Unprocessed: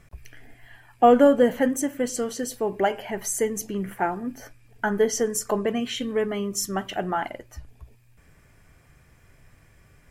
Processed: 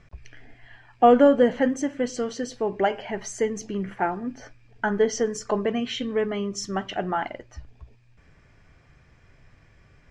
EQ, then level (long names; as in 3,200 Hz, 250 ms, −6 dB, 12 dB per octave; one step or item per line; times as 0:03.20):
low-pass filter 5,900 Hz 24 dB per octave
0.0 dB